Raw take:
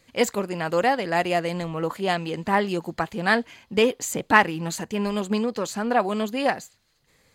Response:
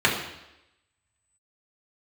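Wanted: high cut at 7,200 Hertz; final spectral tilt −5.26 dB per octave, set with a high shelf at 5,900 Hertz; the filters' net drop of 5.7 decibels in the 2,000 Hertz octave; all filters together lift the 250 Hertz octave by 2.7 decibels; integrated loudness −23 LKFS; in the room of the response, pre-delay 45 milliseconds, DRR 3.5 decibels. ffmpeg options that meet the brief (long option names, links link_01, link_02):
-filter_complex "[0:a]lowpass=7200,equalizer=frequency=250:width_type=o:gain=3.5,equalizer=frequency=2000:width_type=o:gain=-7.5,highshelf=frequency=5900:gain=5,asplit=2[link_01][link_02];[1:a]atrim=start_sample=2205,adelay=45[link_03];[link_02][link_03]afir=irnorm=-1:irlink=0,volume=-22dB[link_04];[link_01][link_04]amix=inputs=2:normalize=0"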